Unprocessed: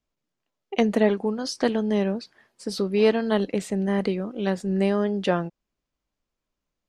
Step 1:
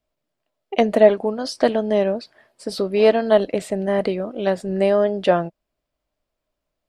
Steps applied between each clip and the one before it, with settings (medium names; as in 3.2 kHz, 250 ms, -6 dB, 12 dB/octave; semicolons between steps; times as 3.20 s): graphic EQ with 31 bands 200 Hz -5 dB, 630 Hz +11 dB, 6.3 kHz -6 dB; trim +3 dB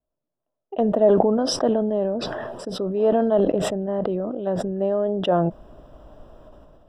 boxcar filter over 20 samples; decay stretcher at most 23 dB/s; trim -4.5 dB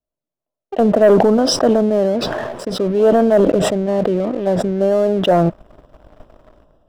waveshaping leveller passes 2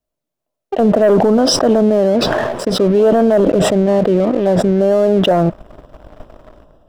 peak limiter -11.5 dBFS, peak gain reduction 9 dB; trim +6.5 dB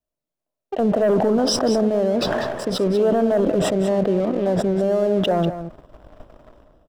delay 193 ms -11 dB; trim -7 dB